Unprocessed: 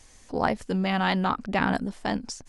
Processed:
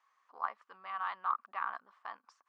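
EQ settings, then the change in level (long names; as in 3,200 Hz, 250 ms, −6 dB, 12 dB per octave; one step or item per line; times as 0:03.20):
four-pole ladder band-pass 1,200 Hz, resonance 80%
−3.5 dB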